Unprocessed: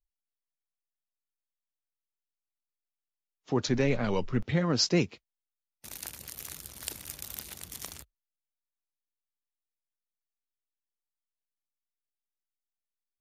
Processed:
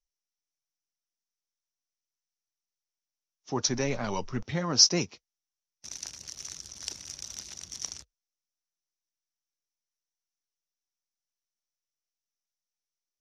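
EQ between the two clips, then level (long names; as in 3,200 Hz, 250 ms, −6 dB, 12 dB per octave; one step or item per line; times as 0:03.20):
low-pass with resonance 5,800 Hz, resonance Q 8.3
notch filter 480 Hz, Q 16
dynamic equaliser 930 Hz, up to +7 dB, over −46 dBFS, Q 1.2
−4.5 dB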